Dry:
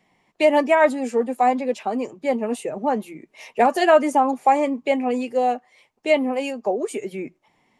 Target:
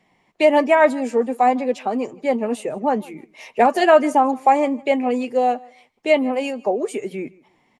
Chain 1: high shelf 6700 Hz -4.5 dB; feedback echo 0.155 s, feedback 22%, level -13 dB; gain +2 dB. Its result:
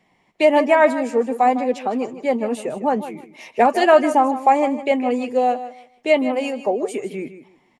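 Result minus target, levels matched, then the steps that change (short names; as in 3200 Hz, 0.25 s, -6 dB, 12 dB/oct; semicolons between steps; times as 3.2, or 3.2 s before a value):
echo-to-direct +11 dB
change: feedback echo 0.155 s, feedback 22%, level -24 dB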